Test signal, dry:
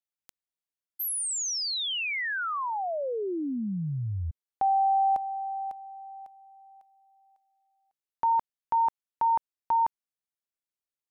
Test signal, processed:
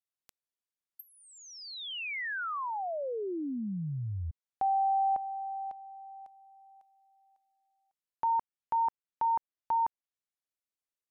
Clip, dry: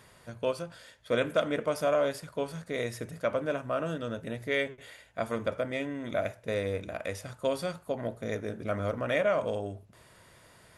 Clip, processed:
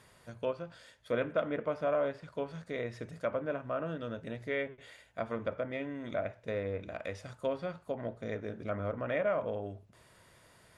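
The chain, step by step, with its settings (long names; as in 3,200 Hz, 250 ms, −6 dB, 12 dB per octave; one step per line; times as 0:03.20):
treble cut that deepens with the level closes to 2,200 Hz, closed at −27.5 dBFS
level −4 dB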